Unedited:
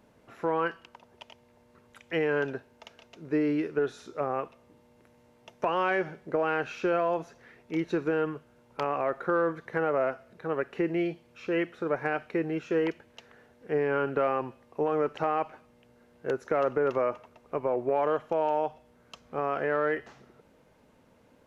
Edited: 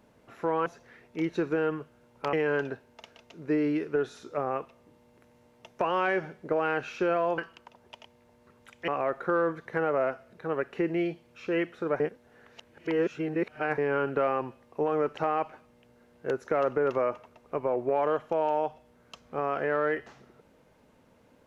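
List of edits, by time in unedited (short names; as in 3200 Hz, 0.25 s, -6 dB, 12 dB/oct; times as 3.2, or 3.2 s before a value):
0.66–2.16 swap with 7.21–8.88
12–13.78 reverse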